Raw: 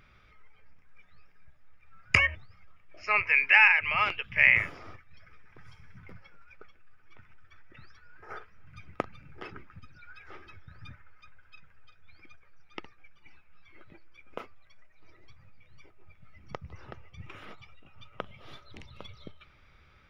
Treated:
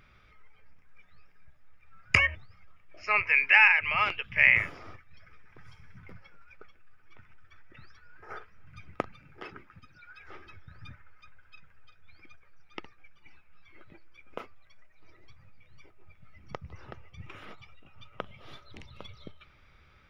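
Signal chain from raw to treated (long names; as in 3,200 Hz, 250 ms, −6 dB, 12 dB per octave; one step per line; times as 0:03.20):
0:09.12–0:10.20: low-shelf EQ 120 Hz −9 dB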